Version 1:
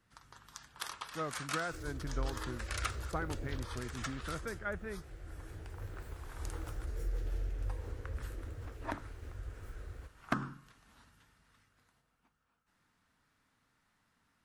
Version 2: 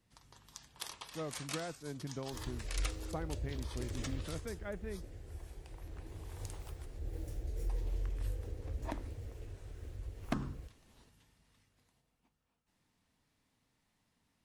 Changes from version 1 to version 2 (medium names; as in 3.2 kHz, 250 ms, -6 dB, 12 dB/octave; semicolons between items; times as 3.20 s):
second sound: entry +0.60 s; master: add peaking EQ 1.4 kHz -12.5 dB 0.78 oct